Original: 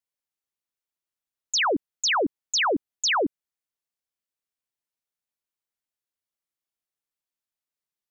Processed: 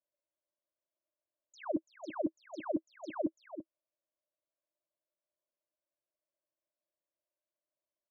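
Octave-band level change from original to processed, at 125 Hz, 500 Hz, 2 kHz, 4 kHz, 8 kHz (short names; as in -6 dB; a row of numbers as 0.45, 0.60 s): -8.0 dB, -10.5 dB, -26.5 dB, -35.5 dB, n/a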